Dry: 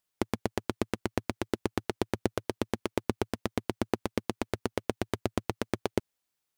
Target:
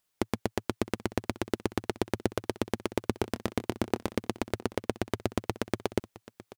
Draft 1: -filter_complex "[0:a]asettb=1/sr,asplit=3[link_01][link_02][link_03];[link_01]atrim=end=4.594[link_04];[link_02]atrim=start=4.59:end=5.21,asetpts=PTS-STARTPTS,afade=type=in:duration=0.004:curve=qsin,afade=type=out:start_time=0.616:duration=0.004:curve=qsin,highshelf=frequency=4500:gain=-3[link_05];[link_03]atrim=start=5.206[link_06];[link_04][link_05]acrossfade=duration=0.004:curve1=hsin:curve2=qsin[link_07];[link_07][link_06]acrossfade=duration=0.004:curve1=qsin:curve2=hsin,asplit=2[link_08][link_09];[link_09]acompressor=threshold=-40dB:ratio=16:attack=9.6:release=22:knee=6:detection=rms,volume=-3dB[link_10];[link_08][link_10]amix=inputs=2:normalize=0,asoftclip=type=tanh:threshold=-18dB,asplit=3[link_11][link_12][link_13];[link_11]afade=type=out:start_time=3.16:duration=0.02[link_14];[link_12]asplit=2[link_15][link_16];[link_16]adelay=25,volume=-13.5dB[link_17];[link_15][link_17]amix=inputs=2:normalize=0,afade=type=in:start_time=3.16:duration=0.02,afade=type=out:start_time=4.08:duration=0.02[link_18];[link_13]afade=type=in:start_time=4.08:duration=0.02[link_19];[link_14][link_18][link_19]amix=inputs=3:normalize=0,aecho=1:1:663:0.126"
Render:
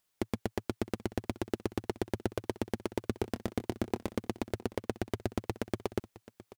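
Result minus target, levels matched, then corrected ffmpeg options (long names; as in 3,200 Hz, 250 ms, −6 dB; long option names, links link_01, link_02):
soft clipping: distortion +17 dB
-filter_complex "[0:a]asettb=1/sr,asplit=3[link_01][link_02][link_03];[link_01]atrim=end=4.594[link_04];[link_02]atrim=start=4.59:end=5.21,asetpts=PTS-STARTPTS,afade=type=in:duration=0.004:curve=qsin,afade=type=out:start_time=0.616:duration=0.004:curve=qsin,highshelf=frequency=4500:gain=-3[link_05];[link_03]atrim=start=5.206[link_06];[link_04][link_05]acrossfade=duration=0.004:curve1=hsin:curve2=qsin[link_07];[link_07][link_06]acrossfade=duration=0.004:curve1=qsin:curve2=hsin,asplit=2[link_08][link_09];[link_09]acompressor=threshold=-40dB:ratio=16:attack=9.6:release=22:knee=6:detection=rms,volume=-3dB[link_10];[link_08][link_10]amix=inputs=2:normalize=0,asoftclip=type=tanh:threshold=-6dB,asplit=3[link_11][link_12][link_13];[link_11]afade=type=out:start_time=3.16:duration=0.02[link_14];[link_12]asplit=2[link_15][link_16];[link_16]adelay=25,volume=-13.5dB[link_17];[link_15][link_17]amix=inputs=2:normalize=0,afade=type=in:start_time=3.16:duration=0.02,afade=type=out:start_time=4.08:duration=0.02[link_18];[link_13]afade=type=in:start_time=4.08:duration=0.02[link_19];[link_14][link_18][link_19]amix=inputs=3:normalize=0,aecho=1:1:663:0.126"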